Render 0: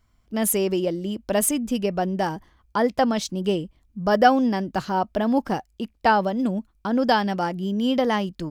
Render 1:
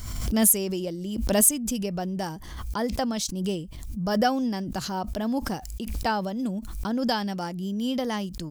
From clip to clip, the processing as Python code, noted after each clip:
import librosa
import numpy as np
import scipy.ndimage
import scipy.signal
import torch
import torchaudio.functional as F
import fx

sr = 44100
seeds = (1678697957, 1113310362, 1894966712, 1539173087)

y = fx.bass_treble(x, sr, bass_db=6, treble_db=13)
y = fx.pre_swell(y, sr, db_per_s=41.0)
y = y * librosa.db_to_amplitude(-8.5)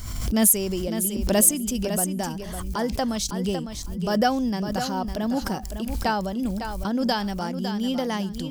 y = fx.echo_feedback(x, sr, ms=555, feedback_pct=19, wet_db=-8.5)
y = y * librosa.db_to_amplitude(1.5)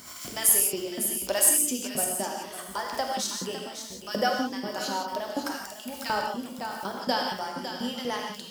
y = fx.filter_lfo_highpass(x, sr, shape='saw_up', hz=4.1, low_hz=240.0, high_hz=2700.0, q=0.95)
y = fx.rev_gated(y, sr, seeds[0], gate_ms=200, shape='flat', drr_db=0.0)
y = y * librosa.db_to_amplitude(-3.5)